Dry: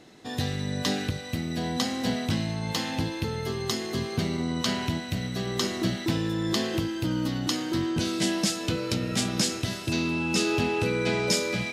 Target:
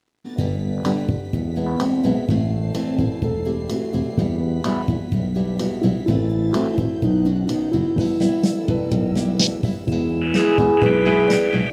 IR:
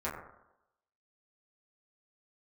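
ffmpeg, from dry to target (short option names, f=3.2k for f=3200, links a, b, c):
-filter_complex "[0:a]aeval=exprs='sgn(val(0))*max(abs(val(0))-0.00355,0)':c=same,afwtdn=0.0316,asplit=2[a][b];[1:a]atrim=start_sample=2205,asetrate=22050,aresample=44100[c];[b][c]afir=irnorm=-1:irlink=0,volume=-16dB[d];[a][d]amix=inputs=2:normalize=0,volume=8dB"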